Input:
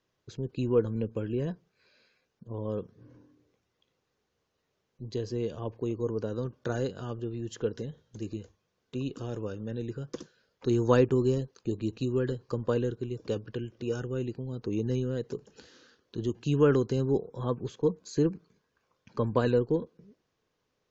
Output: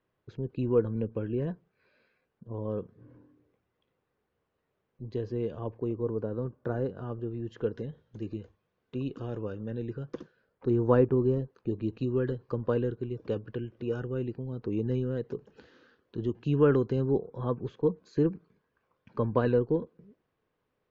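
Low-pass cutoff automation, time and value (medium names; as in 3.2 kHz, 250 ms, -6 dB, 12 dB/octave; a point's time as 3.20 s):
5.58 s 2.2 kHz
6.23 s 1.3 kHz
6.85 s 1.3 kHz
7.85 s 2.6 kHz
10.06 s 2.6 kHz
10.70 s 1.4 kHz
11.25 s 1.4 kHz
11.92 s 2.4 kHz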